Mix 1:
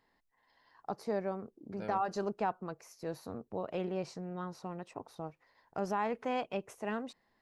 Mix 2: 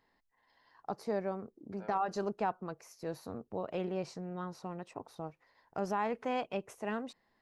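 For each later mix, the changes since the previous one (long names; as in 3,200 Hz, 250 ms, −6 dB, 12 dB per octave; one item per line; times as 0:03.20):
second voice: add resonant band-pass 1,000 Hz, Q 1.5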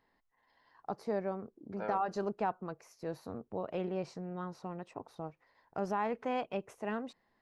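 second voice +11.5 dB
master: add high-shelf EQ 4,400 Hz −7 dB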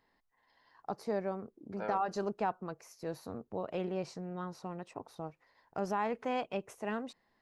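master: add high-shelf EQ 4,400 Hz +7 dB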